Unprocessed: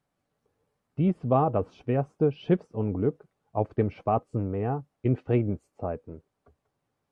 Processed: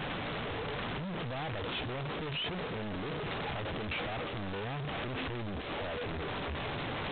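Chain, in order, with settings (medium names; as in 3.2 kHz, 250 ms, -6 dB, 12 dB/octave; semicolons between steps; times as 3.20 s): one-bit comparator; treble shelf 2.2 kHz +5 dB; peak limiter -30 dBFS, peak gain reduction 8.5 dB; G.726 16 kbps 8 kHz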